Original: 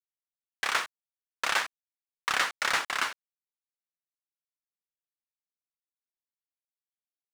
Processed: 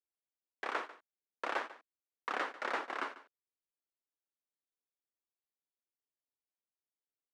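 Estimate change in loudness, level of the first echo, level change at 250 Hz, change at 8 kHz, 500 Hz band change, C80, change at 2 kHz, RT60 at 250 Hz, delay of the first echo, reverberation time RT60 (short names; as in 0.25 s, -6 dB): -10.0 dB, -17.0 dB, +0.5 dB, -23.5 dB, -0.5 dB, none, -11.0 dB, none, 0.145 s, none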